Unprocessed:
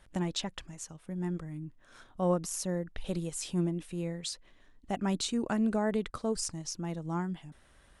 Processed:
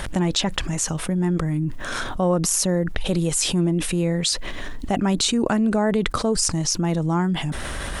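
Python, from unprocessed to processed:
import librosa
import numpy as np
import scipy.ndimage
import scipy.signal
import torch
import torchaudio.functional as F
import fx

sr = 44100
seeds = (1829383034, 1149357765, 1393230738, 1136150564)

y = fx.env_flatten(x, sr, amount_pct=70)
y = F.gain(torch.from_numpy(y), 6.5).numpy()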